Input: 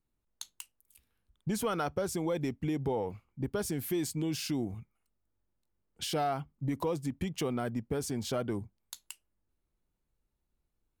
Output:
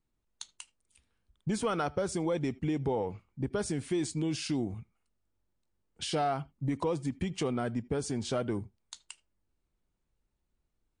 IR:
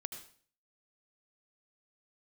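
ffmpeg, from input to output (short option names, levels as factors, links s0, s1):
-filter_complex "[0:a]asplit=2[s0][s1];[1:a]atrim=start_sample=2205,atrim=end_sample=3969,lowpass=5000[s2];[s1][s2]afir=irnorm=-1:irlink=0,volume=0.299[s3];[s0][s3]amix=inputs=2:normalize=0" -ar 22050 -c:a libmp3lame -b:a 48k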